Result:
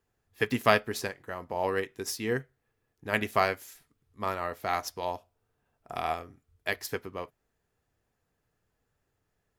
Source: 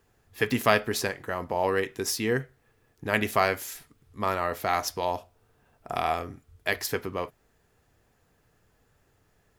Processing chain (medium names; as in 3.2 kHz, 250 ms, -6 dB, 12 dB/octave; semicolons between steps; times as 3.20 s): upward expansion 1.5:1, over -41 dBFS